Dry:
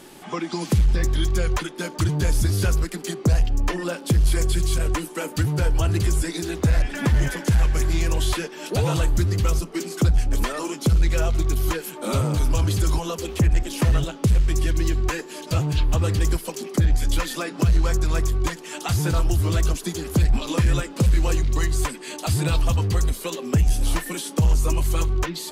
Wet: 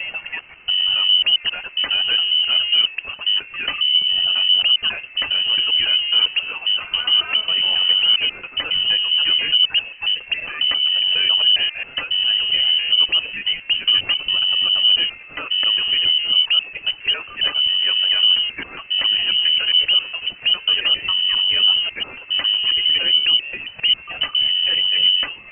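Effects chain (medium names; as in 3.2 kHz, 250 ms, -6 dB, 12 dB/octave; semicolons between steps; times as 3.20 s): slices played last to first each 136 ms, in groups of 5; frequency inversion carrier 3 kHz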